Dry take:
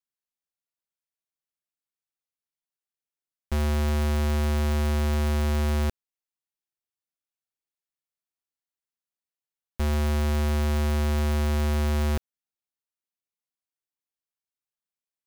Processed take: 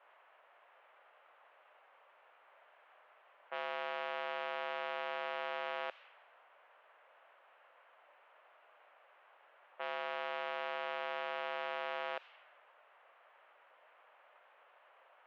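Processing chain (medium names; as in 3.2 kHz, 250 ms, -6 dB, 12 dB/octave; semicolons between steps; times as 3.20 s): word length cut 8-bit, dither triangular; elliptic band-pass 560–3000 Hz, stop band 80 dB; level-controlled noise filter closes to 1.1 kHz, open at -32.5 dBFS; trim -3 dB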